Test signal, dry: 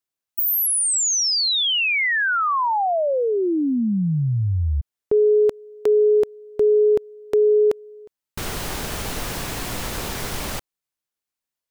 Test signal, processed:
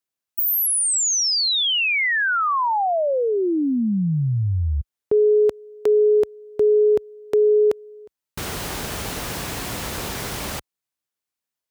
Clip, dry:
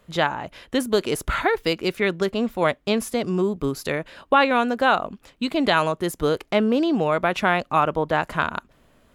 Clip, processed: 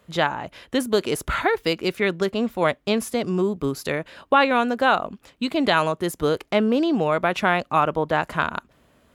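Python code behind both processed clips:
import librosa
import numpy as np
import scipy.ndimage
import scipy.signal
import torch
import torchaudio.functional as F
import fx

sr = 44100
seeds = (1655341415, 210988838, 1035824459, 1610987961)

y = scipy.signal.sosfilt(scipy.signal.butter(2, 48.0, 'highpass', fs=sr, output='sos'), x)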